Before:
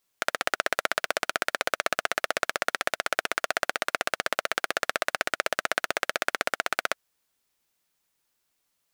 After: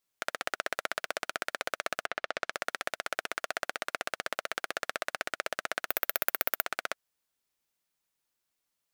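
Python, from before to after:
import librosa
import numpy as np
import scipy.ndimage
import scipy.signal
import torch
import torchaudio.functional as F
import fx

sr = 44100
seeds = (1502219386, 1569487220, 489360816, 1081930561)

y = fx.lowpass(x, sr, hz=fx.line((2.05, 3200.0), (2.51, 6600.0)), slope=12, at=(2.05, 2.51), fade=0.02)
y = fx.resample_bad(y, sr, factor=3, down='none', up='zero_stuff', at=(5.87, 6.66))
y = y * 10.0 ** (-7.0 / 20.0)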